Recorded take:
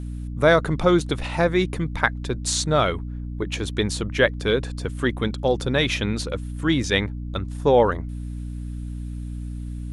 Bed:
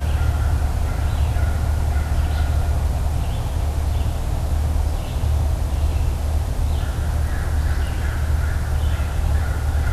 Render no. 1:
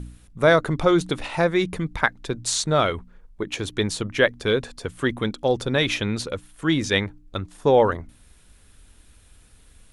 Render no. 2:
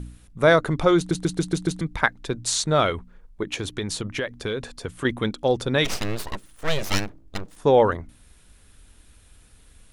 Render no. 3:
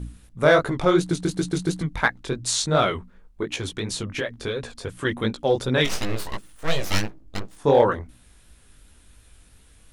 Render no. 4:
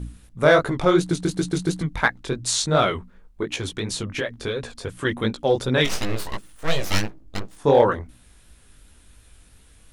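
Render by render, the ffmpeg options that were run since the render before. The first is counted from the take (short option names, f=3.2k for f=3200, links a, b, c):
-af "bandreject=f=60:t=h:w=4,bandreject=f=120:t=h:w=4,bandreject=f=180:t=h:w=4,bandreject=f=240:t=h:w=4,bandreject=f=300:t=h:w=4"
-filter_complex "[0:a]asettb=1/sr,asplit=3[a][b][c];[a]atrim=end=3.584[d];[b]atrim=start=3.58:end=5.05,asetpts=PTS-STARTPTS,afade=t=in:d=0.004:c=qsin,afade=t=out:st=1.466:d=0.004:c=qsin,acompressor=threshold=-23dB:ratio=6:attack=3.2:release=140:knee=1:detection=peak[e];[c]atrim=start=5.046[f];[d][e]acrossfade=d=0.004:c1=hsin:c2=qsin[g];[g][f]acrossfade=d=0.004:c1=qsin:c2=hsin,asplit=3[h][i][j];[h]afade=t=out:st=5.84:d=0.02[k];[i]aeval=exprs='abs(val(0))':c=same,afade=t=in:st=5.84:d=0.02,afade=t=out:st=7.55:d=0.02[l];[j]afade=t=in:st=7.55:d=0.02[m];[k][l][m]amix=inputs=3:normalize=0,asplit=7[n][o][p][q][r][s][t];[n]atrim=end=1.112[u];[o]atrim=start=0.968:end=1.112[v];[p]atrim=start=0.968:end=1.112[w];[q]atrim=start=0.968:end=1.112[x];[r]atrim=start=0.968:end=1.112[y];[s]atrim=start=0.968:end=1.112[z];[t]atrim=start=1.808[aa];[u][v]acrossfade=d=0.004:c1=hsin:c2=hsin[ab];[ab][w]acrossfade=d=0.004:c1=hsin:c2=hsin[ac];[ac][x]acrossfade=d=0.004:c1=hsin:c2=hsin[ad];[ad][y]acrossfade=d=0.004:c1=hsin:c2=hsin[ae];[ae][z]acrossfade=d=0.004:c1=hsin:c2=hsin[af];[af][aa]acrossfade=d=0.004:c1=hsin:c2=hsin"
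-filter_complex "[0:a]flanger=delay=15.5:depth=6.4:speed=2.8,asplit=2[a][b];[b]asoftclip=type=hard:threshold=-15dB,volume=-7dB[c];[a][c]amix=inputs=2:normalize=0"
-af "volume=1dB"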